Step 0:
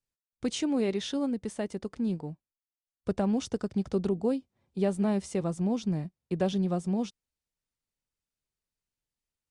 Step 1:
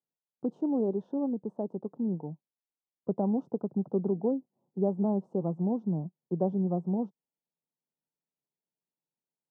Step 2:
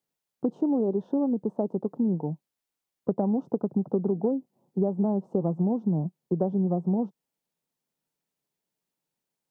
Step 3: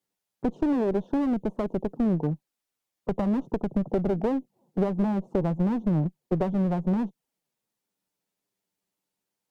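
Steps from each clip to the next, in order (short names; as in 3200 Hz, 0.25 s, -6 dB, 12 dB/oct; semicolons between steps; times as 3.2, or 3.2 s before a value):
elliptic band-pass 150–910 Hz, stop band 40 dB
compressor, threshold -30 dBFS, peak gain reduction 8.5 dB; gain +8.5 dB
envelope flanger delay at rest 10.2 ms, full sweep at -25.5 dBFS; one-sided clip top -31 dBFS; gain +4.5 dB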